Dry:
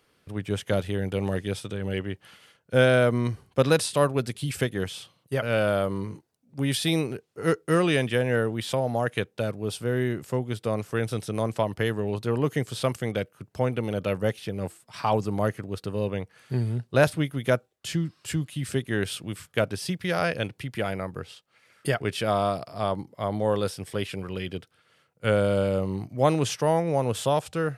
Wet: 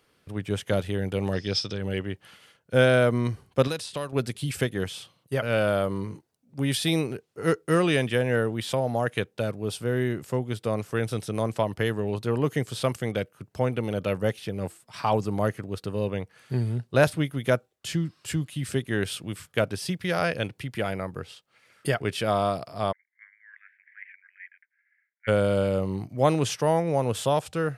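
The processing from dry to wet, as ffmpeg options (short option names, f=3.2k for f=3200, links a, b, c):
-filter_complex "[0:a]asettb=1/sr,asplit=3[a][b][c];[a]atrim=end=1.334[d];[b]atrim=start=1.33:end=1.78,asetpts=PTS-STARTPTS,afade=t=in:d=0.004:c=qsin,afade=t=out:st=0.446:d=0.004:c=qsin,lowpass=f=5.2k:t=q:w=15[e];[c]atrim=start=1.776[f];[d][e]acrossfade=d=0.004:c1=hsin:c2=qsin[g];[g][f]acrossfade=d=0.004:c1=qsin:c2=hsin,asettb=1/sr,asplit=3[h][i][j];[h]atrim=end=3.674[k];[i]atrim=start=3.67:end=4.13,asetpts=PTS-STARTPTS,afade=t=in:d=0.004:c=qsin,afade=t=out:st=0.456:d=0.004:c=qsin,acrossover=split=2600|6400[l][m][n];[l]acompressor=threshold=-31dB:ratio=4[o];[m]acompressor=threshold=-37dB:ratio=4[p];[n]acompressor=threshold=-47dB:ratio=4[q];[o][p][q]amix=inputs=3:normalize=0[r];[j]atrim=start=4.126[s];[k][r]acrossfade=d=0.004:c1=hsin:c2=qsin[t];[t][s]acrossfade=d=0.004:c1=qsin:c2=hsin,asplit=3[u][v][w];[u]afade=t=out:st=22.91:d=0.02[x];[v]asuperpass=centerf=1900:order=8:qfactor=2.9,afade=t=in:st=22.91:d=0.02,afade=t=out:st=25.27:d=0.02[y];[w]afade=t=in:st=25.27:d=0.02[z];[x][y][z]amix=inputs=3:normalize=0"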